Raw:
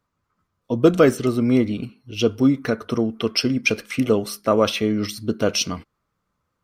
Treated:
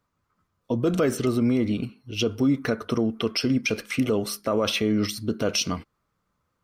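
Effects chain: peak limiter -13.5 dBFS, peak gain reduction 11.5 dB

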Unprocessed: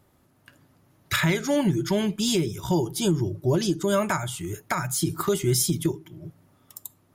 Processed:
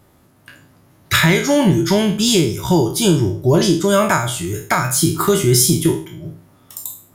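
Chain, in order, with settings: spectral sustain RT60 0.44 s; trim +8 dB

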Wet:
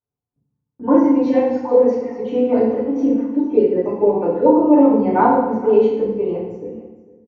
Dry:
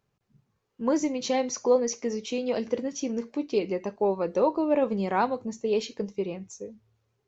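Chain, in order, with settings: random holes in the spectrogram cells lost 27%; low-pass 1.2 kHz 12 dB/octave; gate -55 dBFS, range -24 dB; comb of notches 160 Hz; on a send: delay 453 ms -18 dB; on the sum: FDN reverb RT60 0.95 s, low-frequency decay 1.3×, high-frequency decay 0.85×, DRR -9 dB; trim +3.5 dB

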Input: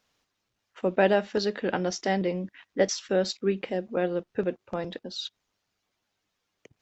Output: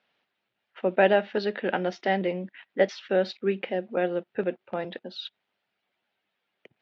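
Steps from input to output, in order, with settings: cabinet simulation 230–3400 Hz, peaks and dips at 290 Hz -7 dB, 460 Hz -4 dB, 1.1 kHz -7 dB; trim +3.5 dB

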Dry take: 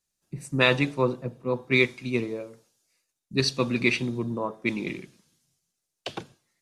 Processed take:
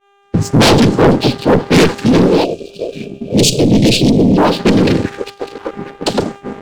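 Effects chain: high-pass 190 Hz 12 dB/octave; noise-vocoded speech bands 8; bass shelf 250 Hz +10 dB; mains buzz 400 Hz, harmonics 5, -50 dBFS -3 dB/octave; on a send: repeats whose band climbs or falls 601 ms, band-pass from 3.7 kHz, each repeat -1.4 oct, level -12 dB; on the sum: valve stage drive 18 dB, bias 0.65; peaking EQ 2 kHz -11.5 dB 1 oct; waveshaping leveller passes 3; time-frequency box 2.44–4.37 s, 730–2300 Hz -24 dB; expander -40 dBFS; loudness maximiser +17.5 dB; loudspeaker Doppler distortion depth 0.31 ms; trim -2.5 dB

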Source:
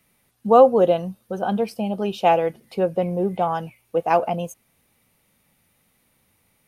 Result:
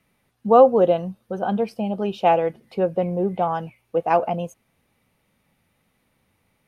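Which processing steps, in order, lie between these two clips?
treble shelf 5.3 kHz -12 dB

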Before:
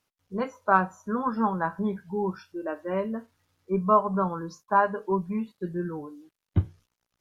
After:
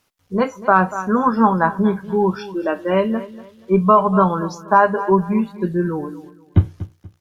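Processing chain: 2.04–4.39 s: peaking EQ 3.2 kHz +9 dB 0.67 oct; feedback delay 239 ms, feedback 29%, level -16.5 dB; loudness maximiser +12 dB; trim -1 dB

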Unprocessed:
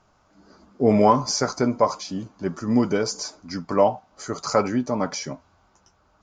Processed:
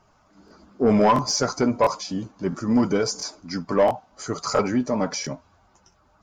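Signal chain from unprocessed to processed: coarse spectral quantiser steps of 15 dB; saturation -12 dBFS, distortion -15 dB; crackling interface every 0.68 s, samples 1024, repeat, from 0.46 s; trim +2 dB

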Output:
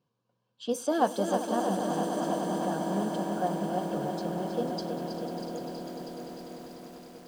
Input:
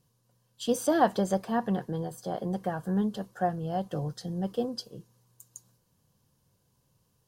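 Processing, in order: high-pass 200 Hz 12 dB/octave; band-stop 1.9 kHz, Q 5.6; echo with a slow build-up 99 ms, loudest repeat 8, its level -13 dB; level-controlled noise filter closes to 2.9 kHz, open at -22 dBFS; bit-crushed delay 321 ms, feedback 80%, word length 8-bit, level -7 dB; trim -2.5 dB

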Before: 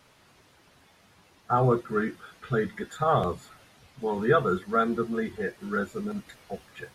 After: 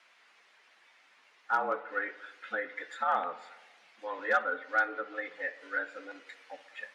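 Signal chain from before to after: low-pass that closes with the level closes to 2.2 kHz, closed at -21.5 dBFS; peaking EQ 2 kHz +9 dB 1.2 oct; Chebyshev shaper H 3 -28 dB, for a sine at -10.5 dBFS; frequency shift +83 Hz; band-pass 620–7400 Hz; on a send: tape echo 62 ms, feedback 78%, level -16 dB, low-pass 2.3 kHz; on the sum: trim -5.5 dB

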